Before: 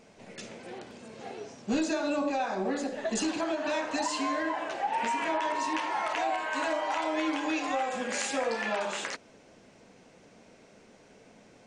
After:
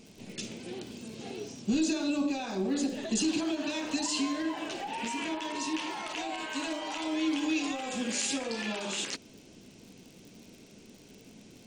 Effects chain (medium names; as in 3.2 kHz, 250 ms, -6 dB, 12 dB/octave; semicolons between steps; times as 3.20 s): crackle 71 per s -48 dBFS; peak limiter -25 dBFS, peak gain reduction 6 dB; high-order bell 1 kHz -11.5 dB 2.4 oct; trim +6 dB